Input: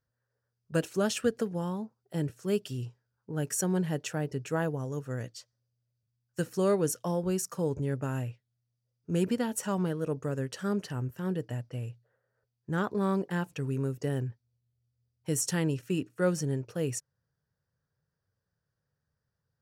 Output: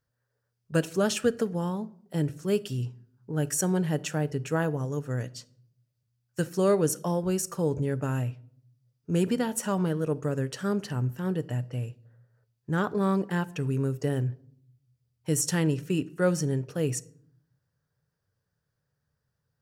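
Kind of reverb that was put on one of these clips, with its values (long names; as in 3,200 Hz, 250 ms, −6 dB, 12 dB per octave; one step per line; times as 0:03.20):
rectangular room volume 1,000 cubic metres, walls furnished, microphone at 0.38 metres
level +3 dB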